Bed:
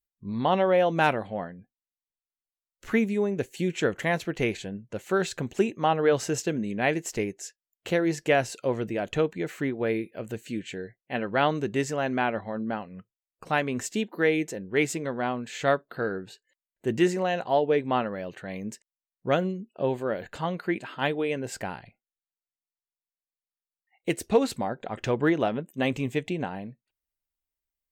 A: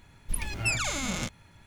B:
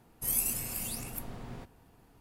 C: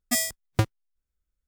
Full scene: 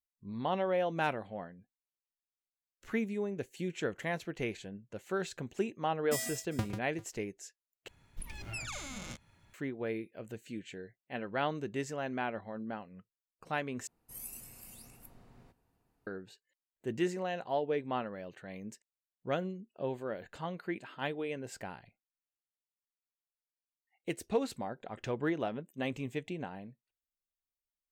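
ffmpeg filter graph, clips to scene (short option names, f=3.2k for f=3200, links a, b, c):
-filter_complex "[0:a]volume=-9.5dB[a];[3:a]aecho=1:1:40|41|63|109|143|397:0.15|0.112|0.106|0.133|0.447|0.106[b];[1:a]alimiter=limit=-21.5dB:level=0:latency=1:release=192[c];[2:a]bandreject=f=3.3k:w=16[d];[a]asplit=3[e][f][g];[e]atrim=end=7.884[h];[c]atrim=end=1.66,asetpts=PTS-STARTPTS,volume=-9.5dB[i];[f]atrim=start=9.536:end=13.874[j];[d]atrim=end=2.2,asetpts=PTS-STARTPTS,volume=-15.5dB[k];[g]atrim=start=16.066[l];[b]atrim=end=1.47,asetpts=PTS-STARTPTS,volume=-12.5dB,afade=t=in:d=0.004:c=hsin,afade=t=out:st=1.466:d=0.004:c=hsin,adelay=6000[m];[h][i]acrossfade=d=0.004:c1=hsin:c2=hsin[n];[n][j]acrossfade=d=0.004:c1=hsin:c2=hsin[o];[o][k]acrossfade=d=0.004:c1=hsin:c2=hsin[p];[p][l]acrossfade=d=0.004:c1=hsin:c2=hsin[q];[q][m]amix=inputs=2:normalize=0"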